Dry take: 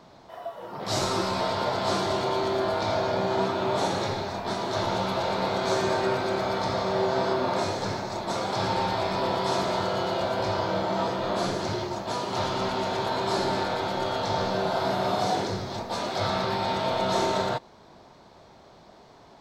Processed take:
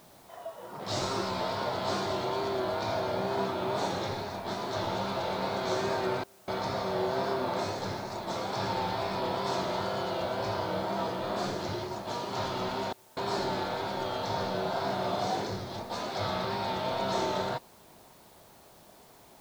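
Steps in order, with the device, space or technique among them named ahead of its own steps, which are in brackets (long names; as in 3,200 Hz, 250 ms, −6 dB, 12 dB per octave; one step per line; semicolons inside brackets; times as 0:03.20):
worn cassette (low-pass filter 8,500 Hz; tape wow and flutter; tape dropouts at 0:06.24/0:12.93, 236 ms −28 dB; white noise bed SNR 28 dB)
level −5 dB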